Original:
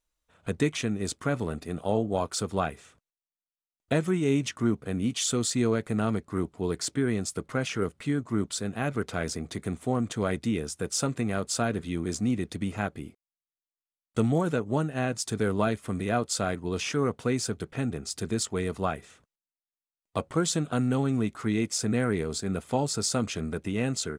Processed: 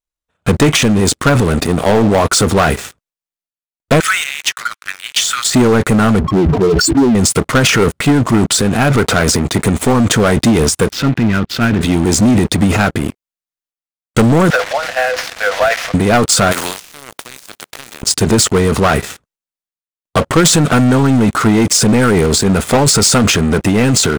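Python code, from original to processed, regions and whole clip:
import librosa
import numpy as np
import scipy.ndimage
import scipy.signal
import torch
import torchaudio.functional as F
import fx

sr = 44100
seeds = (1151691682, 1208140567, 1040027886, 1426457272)

y = fx.chain(x, sr, fx.steep_highpass(hz=1300.0, slope=48),
    fx.high_shelf(hz=3500.0, db=-8.0),
    fx.band_squash(depth_pct=40), at=(4.0, 5.54))
y = fx.chain(y, sr, fx.spec_expand(power=3.5),
    fx.sustainer(db_per_s=77.0), at=(6.19, 7.15))
y = fx.chain(y, sr, fx.lowpass(hz=3300.0, slope=24),
    fx.band_shelf(hz=740.0, db=-10.0, octaves=1.7),
    fx.transient(attack_db=-8, sustain_db=-4), at=(10.9, 11.81))
y = fx.chain(y, sr, fx.delta_mod(bps=32000, step_db=-36.5),
    fx.cheby_ripple_highpass(hz=490.0, ripple_db=9), at=(14.5, 15.94))
y = fx.spec_flatten(y, sr, power=0.39, at=(16.51, 18.01), fade=0.02)
y = fx.highpass(y, sr, hz=400.0, slope=6, at=(16.51, 18.01), fade=0.02)
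y = fx.level_steps(y, sr, step_db=24, at=(16.51, 18.01), fade=0.02)
y = fx.dynamic_eq(y, sr, hz=1400.0, q=4.9, threshold_db=-48.0, ratio=4.0, max_db=4)
y = fx.transient(y, sr, attack_db=7, sustain_db=11)
y = fx.leveller(y, sr, passes=5)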